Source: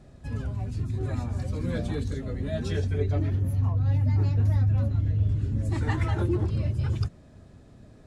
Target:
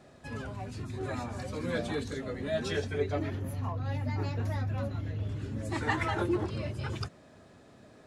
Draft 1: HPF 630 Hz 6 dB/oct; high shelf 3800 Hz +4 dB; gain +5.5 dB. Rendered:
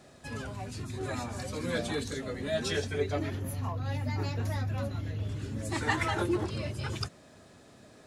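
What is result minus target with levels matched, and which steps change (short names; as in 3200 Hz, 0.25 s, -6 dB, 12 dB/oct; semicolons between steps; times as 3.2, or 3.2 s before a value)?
8000 Hz band +6.5 dB
change: high shelf 3800 Hz -5 dB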